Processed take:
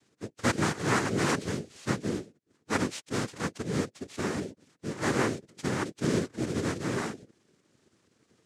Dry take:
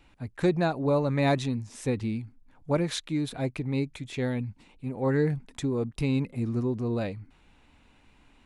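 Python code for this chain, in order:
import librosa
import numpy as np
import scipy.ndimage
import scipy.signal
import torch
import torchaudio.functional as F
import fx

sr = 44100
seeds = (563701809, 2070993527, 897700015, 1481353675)

y = fx.bit_reversed(x, sr, seeds[0], block=32)
y = fx.pitch_keep_formants(y, sr, semitones=-7.5)
y = fx.noise_vocoder(y, sr, seeds[1], bands=3)
y = y * 10.0 ** (-1.5 / 20.0)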